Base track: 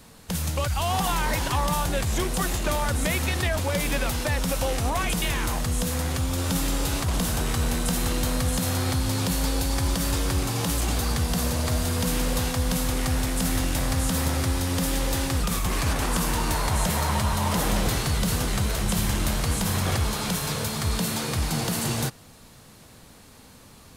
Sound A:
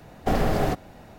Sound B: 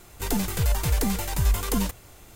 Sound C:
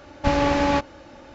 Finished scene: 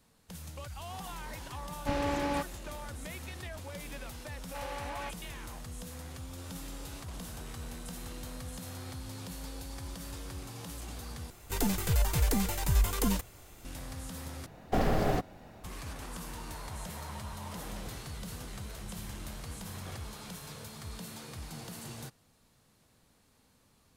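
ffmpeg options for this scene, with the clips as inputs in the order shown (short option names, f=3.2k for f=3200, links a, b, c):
-filter_complex "[3:a]asplit=2[a][b];[0:a]volume=-17.5dB[c];[b]highpass=690,lowpass=5.1k[d];[c]asplit=3[e][f][g];[e]atrim=end=11.304[h];[2:a]atrim=end=2.35,asetpts=PTS-STARTPTS,volume=-4dB[i];[f]atrim=start=13.646:end=14.464[j];[1:a]atrim=end=1.18,asetpts=PTS-STARTPTS,volume=-5dB[k];[g]atrim=start=15.636[l];[a]atrim=end=1.34,asetpts=PTS-STARTPTS,volume=-11.5dB,afade=t=in:d=0.004:c=hsin,afade=t=out:st=1.336:d=0.004:c=hsin,adelay=1620[m];[d]atrim=end=1.34,asetpts=PTS-STARTPTS,volume=-16.5dB,afade=t=in:d=0.004:c=hsin,afade=t=out:st=1.336:d=0.004:c=hsin,adelay=4300[n];[h][i]acrossfade=d=0.004:c1=hsin:c2=hsin[o];[o][j]acrossfade=d=0.004:c1=hsin:c2=hsin[p];[p][k]acrossfade=d=0.004:c1=hsin:c2=hsin[q];[q][l]acrossfade=d=0.004:c1=hsin:c2=hsin[r];[r][m][n]amix=inputs=3:normalize=0"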